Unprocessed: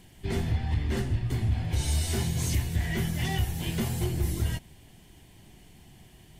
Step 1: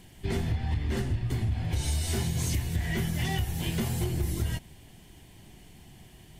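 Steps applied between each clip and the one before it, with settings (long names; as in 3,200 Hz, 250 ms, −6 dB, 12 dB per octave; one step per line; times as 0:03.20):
downward compressor, threshold −26 dBFS, peak gain reduction 5 dB
level +1.5 dB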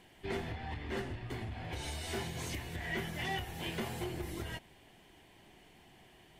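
bass and treble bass −14 dB, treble −11 dB
level −1 dB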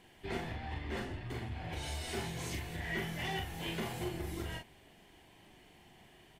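double-tracking delay 42 ms −4 dB
level −1.5 dB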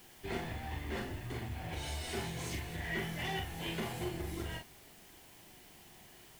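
bit-depth reduction 10 bits, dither triangular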